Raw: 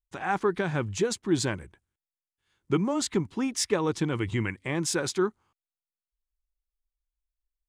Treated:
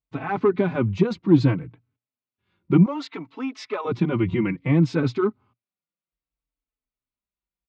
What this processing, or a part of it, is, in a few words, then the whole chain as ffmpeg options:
barber-pole flanger into a guitar amplifier: -filter_complex "[0:a]asplit=2[a][b];[b]adelay=4,afreqshift=-0.62[c];[a][c]amix=inputs=2:normalize=1,asoftclip=type=tanh:threshold=-18.5dB,highpass=82,equalizer=f=120:t=q:w=4:g=10,equalizer=f=170:t=q:w=4:g=8,equalizer=f=270:t=q:w=4:g=9,equalizer=f=820:t=q:w=4:g=-3,equalizer=f=1.7k:t=q:w=4:g=-9,equalizer=f=3.2k:t=q:w=4:g=-7,lowpass=f=3.5k:w=0.5412,lowpass=f=3.5k:w=1.3066,asettb=1/sr,asplit=3[d][e][f];[d]atrim=end=2.864[g];[e]atrim=start=2.86:end=3.85,asetpts=PTS-STARTPTS,afade=t=in:d=0.004:c=qsin,afade=t=out:st=0.986:d=0.004:c=qsin,highpass=670[h];[f]atrim=start=3.846[i];[g][h]acrossfade=d=0.004:c1=hsin:c2=qsin[j];[j][i]acrossfade=d=0.004:c1=qsin:c2=hsin,volume=8dB"

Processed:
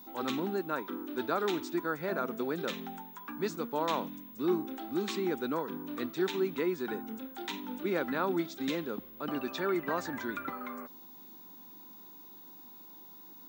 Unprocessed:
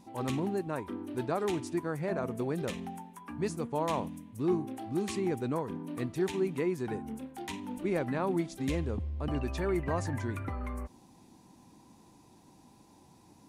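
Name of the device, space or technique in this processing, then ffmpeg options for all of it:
old television with a line whistle: -af "highpass=f=200:w=0.5412,highpass=f=200:w=1.3066,equalizer=f=690:t=q:w=4:g=-3,equalizer=f=1.4k:t=q:w=4:g=10,equalizer=f=3.7k:t=q:w=4:g=9,lowpass=f=7.2k:w=0.5412,lowpass=f=7.2k:w=1.3066,aeval=exprs='val(0)+0.00355*sin(2*PI*15625*n/s)':c=same"

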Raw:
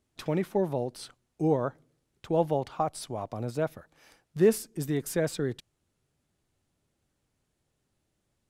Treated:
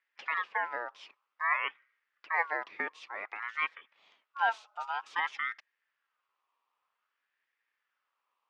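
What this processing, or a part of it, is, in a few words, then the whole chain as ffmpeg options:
voice changer toy: -af "aeval=exprs='val(0)*sin(2*PI*1400*n/s+1400*0.25/0.53*sin(2*PI*0.53*n/s))':c=same,highpass=550,equalizer=f=690:t=q:w=4:g=-5,equalizer=f=1.5k:t=q:w=4:g=-7,equalizer=f=2.6k:t=q:w=4:g=4,equalizer=f=4.1k:t=q:w=4:g=-5,lowpass=f=4.2k:w=0.5412,lowpass=f=4.2k:w=1.3066"

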